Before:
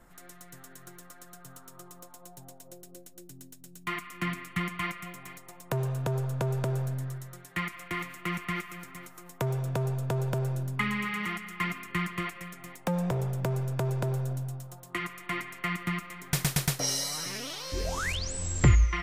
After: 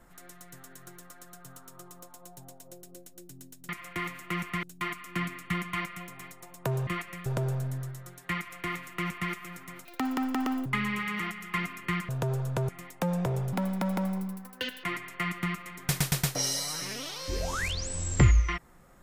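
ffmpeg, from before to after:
-filter_complex "[0:a]asplit=11[a][b][c][d][e][f][g][h][i][j][k];[a]atrim=end=3.692[l];[b]atrim=start=7.638:end=8.582[m];[c]atrim=start=3.688:end=5.932[n];[d]atrim=start=12.148:end=12.542[o];[e]atrim=start=6.528:end=9.124[p];[f]atrim=start=9.12:end=10.72,asetpts=PTS-STARTPTS,asetrate=87318,aresample=44100,atrim=end_sample=35636,asetpts=PTS-STARTPTS[q];[g]atrim=start=10.716:end=12.152[r];[h]atrim=start=5.928:end=6.532[s];[i]atrim=start=12.538:end=13.384[t];[j]atrim=start=13.38:end=15.28,asetpts=PTS-STARTPTS,asetrate=63945,aresample=44100,atrim=end_sample=57786,asetpts=PTS-STARTPTS[u];[k]atrim=start=15.276[v];[l][m]acrossfade=d=0.004:c1=hsin:c2=hsin[w];[w][n]acrossfade=d=0.004:c1=hsin:c2=hsin[x];[x][o]acrossfade=d=0.004:c1=hsin:c2=hsin[y];[y][p]acrossfade=d=0.004:c1=hsin:c2=hsin[z];[z][q]acrossfade=d=0.004:c1=hsin:c2=hsin[aa];[aa][r]acrossfade=d=0.004:c1=hsin:c2=hsin[ab];[ab][s]acrossfade=d=0.004:c1=hsin:c2=hsin[ac];[ac][t]acrossfade=d=0.004:c1=hsin:c2=hsin[ad];[ad][u]acrossfade=d=0.004:c1=hsin:c2=hsin[ae];[ae][v]acrossfade=d=0.004:c1=hsin:c2=hsin"

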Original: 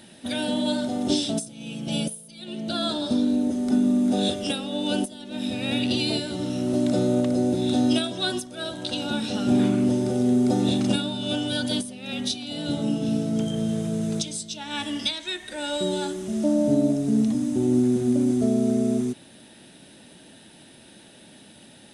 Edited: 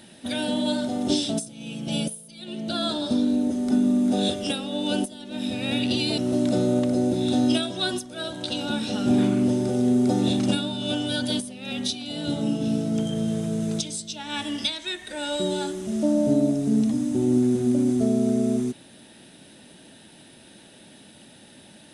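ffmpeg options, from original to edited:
-filter_complex "[0:a]asplit=2[a][b];[a]atrim=end=6.182[c];[b]atrim=start=6.588[d];[c][d]acrossfade=d=0.004:c1=hsin:c2=hsin"

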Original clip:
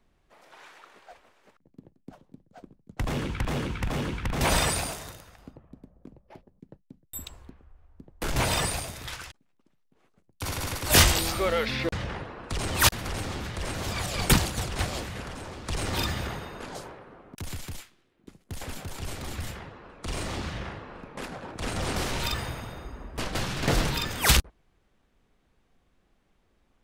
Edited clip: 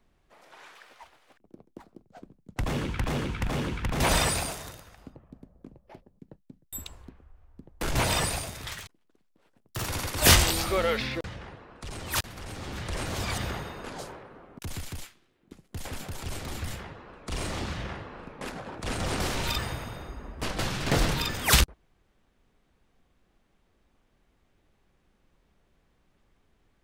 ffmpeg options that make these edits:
-filter_complex "[0:a]asplit=8[a][b][c][d][e][f][g][h];[a]atrim=end=0.754[i];[b]atrim=start=0.75:end=2.47,asetpts=PTS-STARTPTS,asetrate=57771,aresample=44100,atrim=end_sample=57902,asetpts=PTS-STARTPTS[j];[c]atrim=start=2.466:end=9.124[k];[d]atrim=start=9.12:end=10.54,asetpts=PTS-STARTPTS,asetrate=54684,aresample=44100[l];[e]atrim=start=10.536:end=12.12,asetpts=PTS-STARTPTS,afade=t=out:st=1.124:d=0.46:c=qua:silence=0.375837[m];[f]atrim=start=12.12:end=13.05,asetpts=PTS-STARTPTS,volume=-8.5dB[n];[g]atrim=start=13.05:end=14.062,asetpts=PTS-STARTPTS,afade=t=in:d=0.46:c=qua:silence=0.375837[o];[h]atrim=start=16.138[p];[i][j]acrossfade=d=0.004:c1=hsin:c2=hsin[q];[q][k]acrossfade=d=0.004:c1=hsin:c2=hsin[r];[r][l]acrossfade=d=0.004:c1=hsin:c2=hsin[s];[m][n][o]concat=n=3:v=0:a=1[t];[s][t]acrossfade=d=0.004:c1=hsin:c2=hsin[u];[u][p]acrossfade=d=0.004:c1=hsin:c2=hsin"

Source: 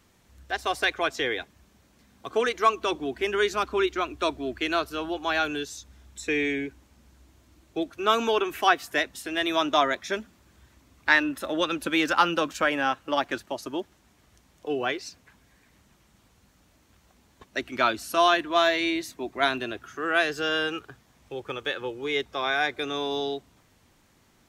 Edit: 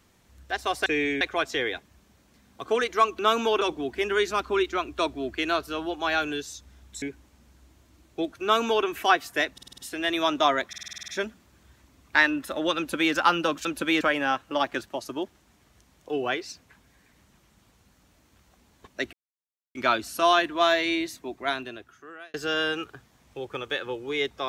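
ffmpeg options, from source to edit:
-filter_complex "[0:a]asplit=23[a][b][c][d][e][f][g][h][i][j][k][l][m][n][o][p][q][r][s][t][u][v][w];[a]atrim=end=0.862[x];[b]atrim=start=6.248:end=6.602[y];[c]atrim=start=0.858:end=2.842[z];[d]atrim=start=8.008:end=8.432[aa];[e]atrim=start=2.838:end=6.252[ab];[f]atrim=start=6.598:end=9.162[ac];[g]atrim=start=9.108:end=9.162[ad];[h]atrim=start=9.108:end=9.162[ae];[i]atrim=start=9.108:end=9.162[af];[j]atrim=start=9.108:end=9.162[ag];[k]atrim=start=9.108:end=10.062[ah];[l]atrim=start=10.008:end=10.062[ai];[m]atrim=start=10.008:end=10.062[aj];[n]atrim=start=10.008:end=10.062[ak];[o]atrim=start=10.008:end=10.062[al];[p]atrim=start=10.008:end=10.062[am];[q]atrim=start=10.008:end=10.062[an];[r]atrim=start=10.008:end=10.062[ao];[s]atrim=start=10.008:end=12.582[ap];[t]atrim=start=11.698:end=12.062[aq];[u]atrim=start=12.578:end=17.7,asetpts=PTS-STARTPTS,afade=t=out:st=5.118:d=0.004:c=hsin,apad=pad_dur=0.62[ar];[v]atrim=start=17.7:end=20.29,asetpts=PTS-STARTPTS,afade=t=in:d=0.004:c=hsin,afade=t=out:st=1.23:d=1.36[as];[w]atrim=start=20.29,asetpts=PTS-STARTPTS,afade=t=in:d=0.004:c=hsin[at];[x][y]acrossfade=d=0.004:c1=hsin:c2=hsin[au];[au][z]acrossfade=d=0.004:c1=hsin:c2=hsin[av];[av][aa]acrossfade=d=0.004:c1=hsin:c2=hsin[aw];[aw][ab]acrossfade=d=0.004:c1=hsin:c2=hsin[ax];[ax][ac]acrossfade=d=0.004:c1=hsin:c2=hsin[ay];[ay][ad]acrossfade=d=0.004:c1=hsin:c2=hsin[az];[az][ae]acrossfade=d=0.004:c1=hsin:c2=hsin[ba];[ba][af]acrossfade=d=0.004:c1=hsin:c2=hsin[bb];[bb][ag]acrossfade=d=0.004:c1=hsin:c2=hsin[bc];[bc][ah]acrossfade=d=0.004:c1=hsin:c2=hsin[bd];[bd][ai]acrossfade=d=0.004:c1=hsin:c2=hsin[be];[be][aj]acrossfade=d=0.004:c1=hsin:c2=hsin[bf];[bf][ak]acrossfade=d=0.004:c1=hsin:c2=hsin[bg];[bg][al]acrossfade=d=0.004:c1=hsin:c2=hsin[bh];[bh][am]acrossfade=d=0.004:c1=hsin:c2=hsin[bi];[bi][an]acrossfade=d=0.004:c1=hsin:c2=hsin[bj];[bj][ao]acrossfade=d=0.004:c1=hsin:c2=hsin[bk];[bk][ap]acrossfade=d=0.004:c1=hsin:c2=hsin[bl];[bl][aq]acrossfade=d=0.004:c1=hsin:c2=hsin[bm];[ar][as][at]concat=n=3:v=0:a=1[bn];[bm][bn]acrossfade=d=0.004:c1=hsin:c2=hsin"

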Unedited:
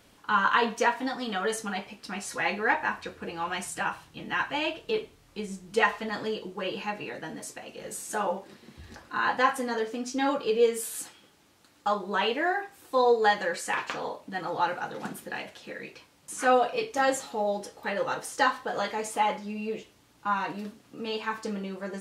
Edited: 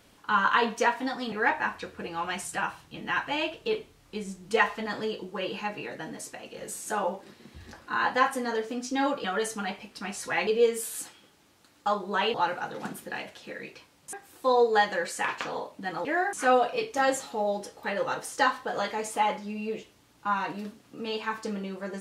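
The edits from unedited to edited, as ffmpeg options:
-filter_complex "[0:a]asplit=8[a][b][c][d][e][f][g][h];[a]atrim=end=1.322[i];[b]atrim=start=2.548:end=10.472[j];[c]atrim=start=1.318:end=2.552[k];[d]atrim=start=10.468:end=12.342[l];[e]atrim=start=14.538:end=16.332[m];[f]atrim=start=12.618:end=14.542[n];[g]atrim=start=12.338:end=12.622[o];[h]atrim=start=16.328[p];[i][j]acrossfade=d=0.004:c1=hsin:c2=hsin[q];[q][k]acrossfade=d=0.004:c1=hsin:c2=hsin[r];[r][l]acrossfade=d=0.004:c1=hsin:c2=hsin[s];[s][m]acrossfade=d=0.004:c1=hsin:c2=hsin[t];[t][n]acrossfade=d=0.004:c1=hsin:c2=hsin[u];[u][o]acrossfade=d=0.004:c1=hsin:c2=hsin[v];[v][p]acrossfade=d=0.004:c1=hsin:c2=hsin"

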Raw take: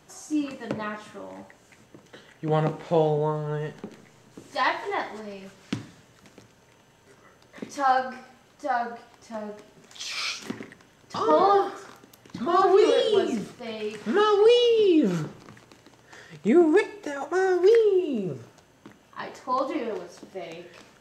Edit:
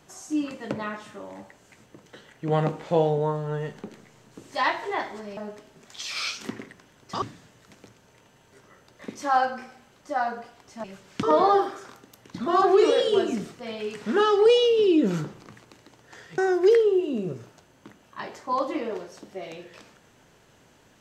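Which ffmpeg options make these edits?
-filter_complex "[0:a]asplit=6[a][b][c][d][e][f];[a]atrim=end=5.372[g];[b]atrim=start=9.378:end=11.232[h];[c]atrim=start=5.758:end=9.382[i];[d]atrim=start=5.368:end=5.762[j];[e]atrim=start=11.228:end=16.382[k];[f]atrim=start=17.378[l];[g][h]acrossfade=d=0.004:c1=hsin:c2=hsin[m];[m][i]acrossfade=d=0.004:c1=hsin:c2=hsin[n];[n][j]acrossfade=d=0.004:c1=hsin:c2=hsin[o];[o][k]acrossfade=d=0.004:c1=hsin:c2=hsin[p];[p][l]acrossfade=d=0.004:c1=hsin:c2=hsin"

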